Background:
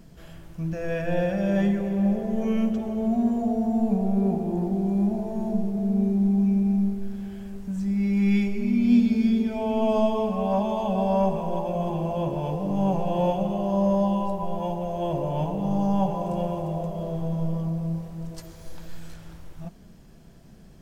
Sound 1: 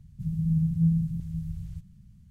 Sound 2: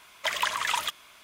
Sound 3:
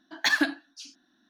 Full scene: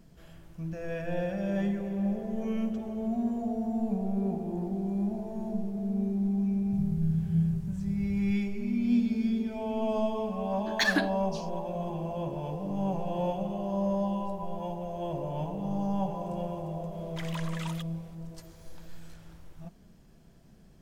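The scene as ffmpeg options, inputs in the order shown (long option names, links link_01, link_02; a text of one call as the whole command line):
ffmpeg -i bed.wav -i cue0.wav -i cue1.wav -i cue2.wav -filter_complex "[0:a]volume=-7dB[link_01];[1:a]atrim=end=2.3,asetpts=PTS-STARTPTS,volume=-3.5dB,afade=type=in:duration=0.004:curve=hsin,afade=type=out:start_time=2.296:duration=0.004:curve=hsin,adelay=6530[link_02];[3:a]atrim=end=1.29,asetpts=PTS-STARTPTS,volume=-3dB,afade=type=in:duration=0.004:curve=hsin,afade=type=out:start_time=1.286:duration=0.004:curve=hsin,adelay=10550[link_03];[2:a]atrim=end=1.23,asetpts=PTS-STARTPTS,volume=-14.5dB,afade=type=in:duration=0.004:curve=hsin,afade=type=out:start_time=1.226:duration=0.004:curve=hsin,adelay=16920[link_04];[link_01][link_02][link_03][link_04]amix=inputs=4:normalize=0" out.wav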